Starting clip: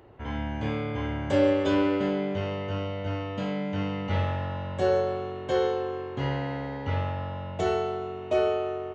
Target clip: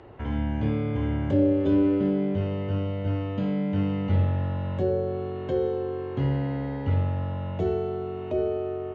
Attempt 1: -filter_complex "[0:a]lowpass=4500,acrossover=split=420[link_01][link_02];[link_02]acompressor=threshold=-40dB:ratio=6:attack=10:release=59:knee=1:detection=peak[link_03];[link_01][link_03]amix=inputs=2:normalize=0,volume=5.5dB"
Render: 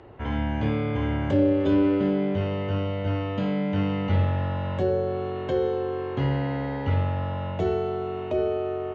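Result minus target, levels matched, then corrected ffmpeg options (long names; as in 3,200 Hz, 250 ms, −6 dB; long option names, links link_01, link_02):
downward compressor: peak gain reduction −6 dB
-filter_complex "[0:a]lowpass=4500,acrossover=split=420[link_01][link_02];[link_02]acompressor=threshold=-47.5dB:ratio=6:attack=10:release=59:knee=1:detection=peak[link_03];[link_01][link_03]amix=inputs=2:normalize=0,volume=5.5dB"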